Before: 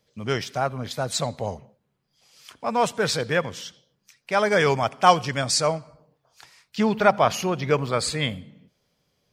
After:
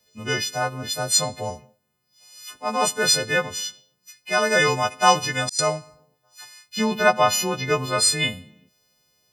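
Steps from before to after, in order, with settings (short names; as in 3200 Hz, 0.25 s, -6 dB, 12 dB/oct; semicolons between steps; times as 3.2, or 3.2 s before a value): frequency quantiser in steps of 3 st; 4.98–5.59 auto swell 0.536 s; gain -1 dB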